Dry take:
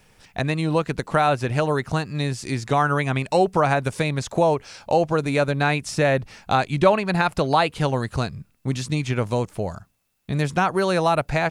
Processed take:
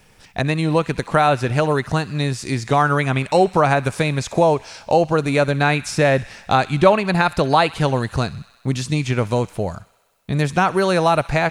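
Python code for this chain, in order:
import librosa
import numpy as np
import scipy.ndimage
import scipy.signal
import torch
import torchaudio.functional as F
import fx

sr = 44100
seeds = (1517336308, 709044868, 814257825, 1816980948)

y = fx.echo_wet_highpass(x, sr, ms=64, feedback_pct=76, hz=1500.0, wet_db=-18.0)
y = y * librosa.db_to_amplitude(3.5)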